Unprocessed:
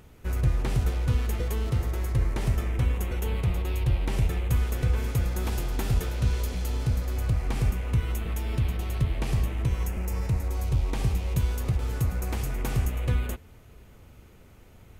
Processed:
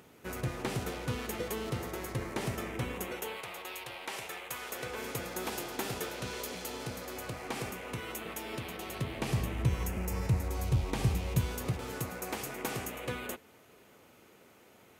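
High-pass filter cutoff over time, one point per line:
0:02.99 210 Hz
0:03.41 710 Hz
0:04.51 710 Hz
0:05.10 310 Hz
0:08.81 310 Hz
0:09.58 88 Hz
0:11.24 88 Hz
0:12.15 290 Hz

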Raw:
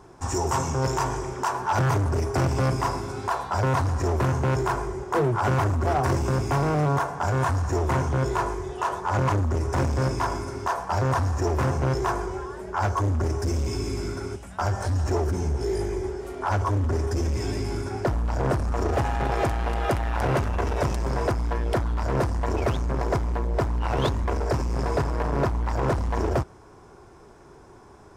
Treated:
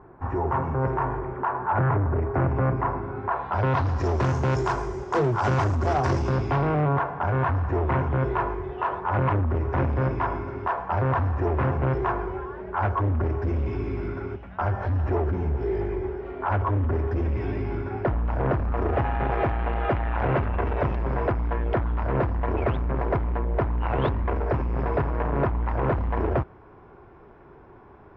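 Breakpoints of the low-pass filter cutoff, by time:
low-pass filter 24 dB per octave
0:03.26 1,900 Hz
0:03.62 3,400 Hz
0:04.30 6,500 Hz
0:05.98 6,500 Hz
0:06.87 2,700 Hz

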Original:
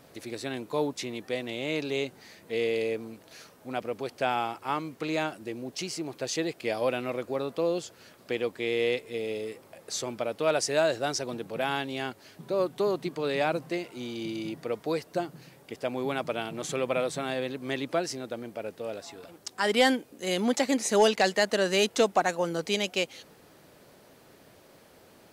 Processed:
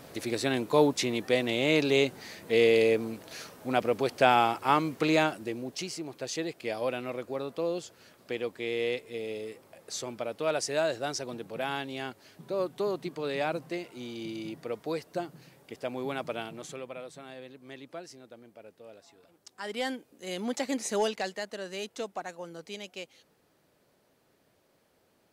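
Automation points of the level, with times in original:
0:05.06 +6 dB
0:06.02 −3.5 dB
0:16.41 −3.5 dB
0:16.95 −14 dB
0:19.24 −14 dB
0:20.85 −4.5 dB
0:21.50 −13 dB

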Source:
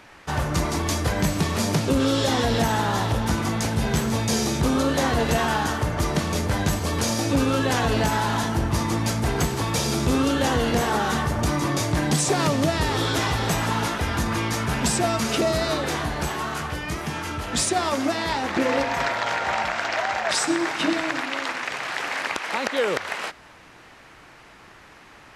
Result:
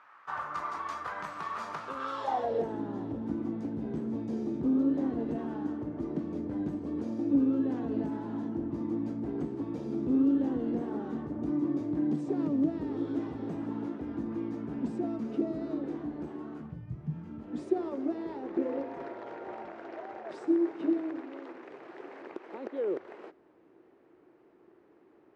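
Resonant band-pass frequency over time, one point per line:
resonant band-pass, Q 4.3
0:02.13 1,200 Hz
0:02.81 290 Hz
0:16.58 290 Hz
0:16.86 110 Hz
0:17.69 360 Hz

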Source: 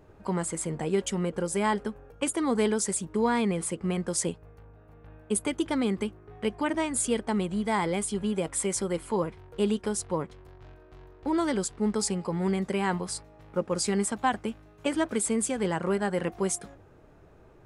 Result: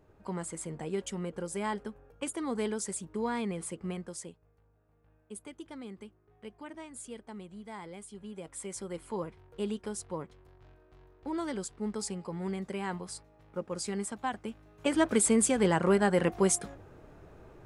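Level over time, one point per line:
0:03.90 −7.5 dB
0:04.32 −17 dB
0:08.09 −17 dB
0:09.10 −8 dB
0:14.38 −8 dB
0:15.10 +2.5 dB

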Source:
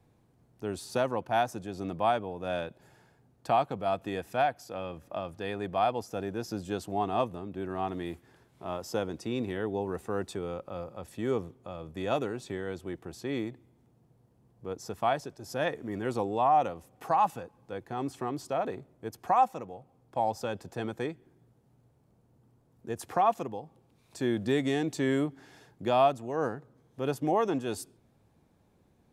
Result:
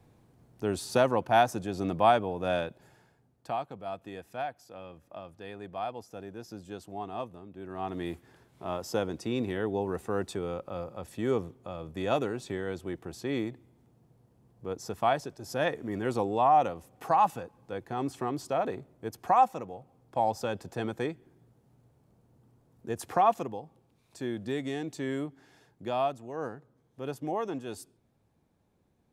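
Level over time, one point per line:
0:02.45 +4.5 dB
0:03.62 −8 dB
0:07.57 −8 dB
0:08.04 +1.5 dB
0:23.32 +1.5 dB
0:24.32 −5.5 dB

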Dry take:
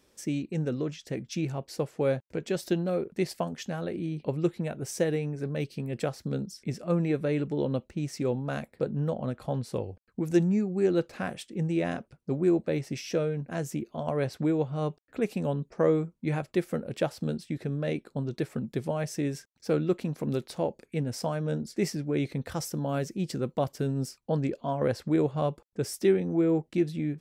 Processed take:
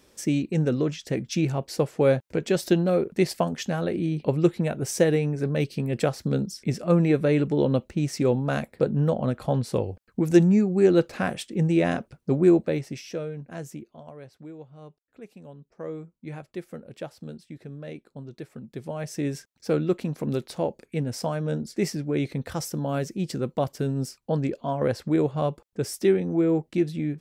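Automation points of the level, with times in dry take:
0:12.51 +6.5 dB
0:13.12 −4 dB
0:13.68 −4 dB
0:14.19 −15.5 dB
0:15.56 −15.5 dB
0:16.14 −8 dB
0:18.58 −8 dB
0:19.28 +2.5 dB

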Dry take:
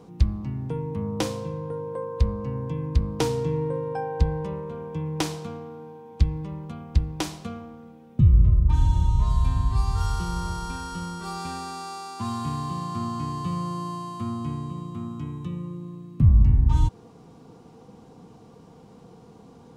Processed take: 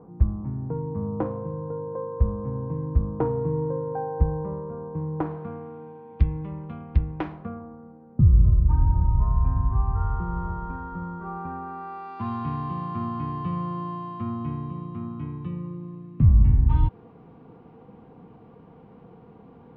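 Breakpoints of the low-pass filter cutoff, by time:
low-pass filter 24 dB per octave
0:05.18 1,300 Hz
0:05.79 2,600 Hz
0:07.01 2,600 Hz
0:07.64 1,400 Hz
0:11.61 1,400 Hz
0:12.19 2,600 Hz

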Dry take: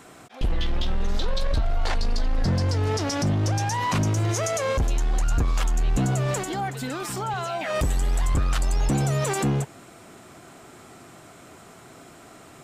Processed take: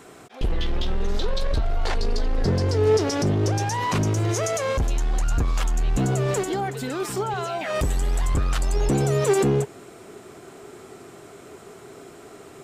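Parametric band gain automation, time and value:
parametric band 410 Hz 0.41 octaves
+7.5 dB
from 0:01.97 +14 dB
from 0:03.63 +8 dB
from 0:04.56 +1 dB
from 0:06.00 +10 dB
from 0:07.59 +4 dB
from 0:08.74 +12.5 dB

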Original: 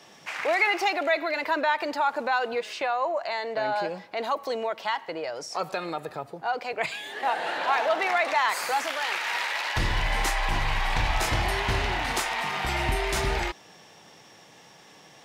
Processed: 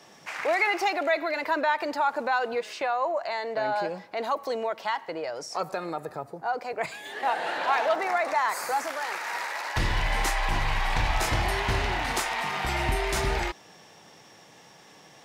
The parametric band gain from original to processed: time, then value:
parametric band 3,100 Hz 1 octave
−4 dB
from 0:05.63 −10.5 dB
from 0:07.05 −2 dB
from 0:07.95 −11.5 dB
from 0:09.76 −2 dB

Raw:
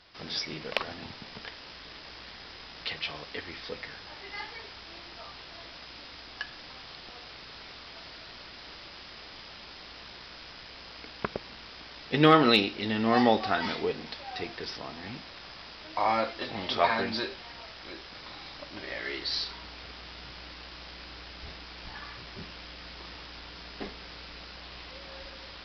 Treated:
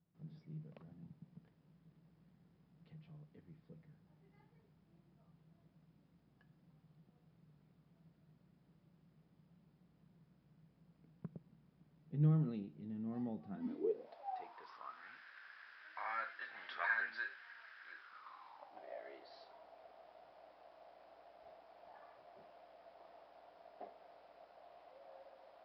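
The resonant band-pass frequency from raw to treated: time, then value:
resonant band-pass, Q 7.3
0:13.46 160 Hz
0:14.14 670 Hz
0:15.19 1,600 Hz
0:17.93 1,600 Hz
0:18.88 670 Hz

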